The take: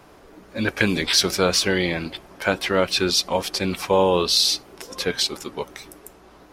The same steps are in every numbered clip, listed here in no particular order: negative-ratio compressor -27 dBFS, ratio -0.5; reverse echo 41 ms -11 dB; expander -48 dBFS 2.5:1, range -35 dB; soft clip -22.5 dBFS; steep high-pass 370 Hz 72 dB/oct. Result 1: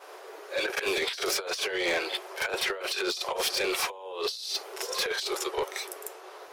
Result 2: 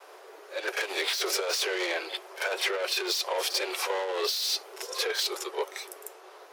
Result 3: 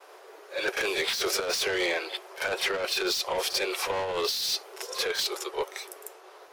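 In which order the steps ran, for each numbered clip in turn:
expander > steep high-pass > negative-ratio compressor > reverse echo > soft clip; soft clip > reverse echo > negative-ratio compressor > expander > steep high-pass; steep high-pass > soft clip > reverse echo > negative-ratio compressor > expander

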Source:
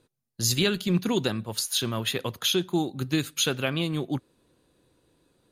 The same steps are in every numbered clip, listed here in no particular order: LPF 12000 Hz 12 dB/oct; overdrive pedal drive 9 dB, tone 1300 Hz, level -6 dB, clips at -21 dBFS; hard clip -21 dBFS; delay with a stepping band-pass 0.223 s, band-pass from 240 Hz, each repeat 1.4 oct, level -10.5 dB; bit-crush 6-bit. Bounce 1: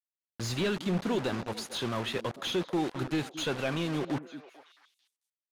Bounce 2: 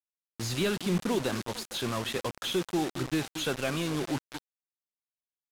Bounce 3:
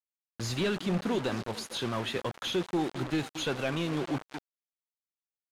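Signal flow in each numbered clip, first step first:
bit-crush > LPF > hard clip > overdrive pedal > delay with a stepping band-pass; delay with a stepping band-pass > overdrive pedal > bit-crush > LPF > hard clip; hard clip > delay with a stepping band-pass > bit-crush > overdrive pedal > LPF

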